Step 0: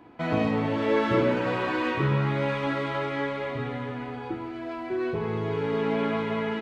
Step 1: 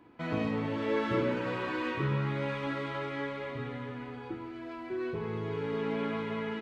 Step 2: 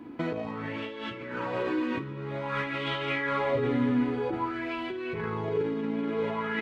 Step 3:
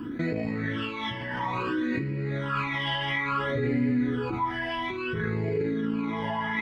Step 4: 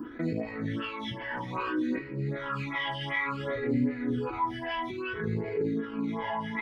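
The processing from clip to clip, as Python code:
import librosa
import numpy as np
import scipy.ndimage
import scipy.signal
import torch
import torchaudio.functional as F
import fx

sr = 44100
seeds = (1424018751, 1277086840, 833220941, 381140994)

y1 = fx.peak_eq(x, sr, hz=720.0, db=-6.5, octaves=0.38)
y1 = y1 * 10.0 ** (-6.0 / 20.0)
y2 = fx.over_compress(y1, sr, threshold_db=-38.0, ratio=-1.0)
y2 = fx.bell_lfo(y2, sr, hz=0.51, low_hz=250.0, high_hz=3200.0, db=12)
y2 = y2 * 10.0 ** (3.0 / 20.0)
y3 = fx.phaser_stages(y2, sr, stages=12, low_hz=410.0, high_hz=1100.0, hz=0.59, feedback_pct=40)
y3 = fx.env_flatten(y3, sr, amount_pct=50)
y4 = fx.stagger_phaser(y3, sr, hz=2.6)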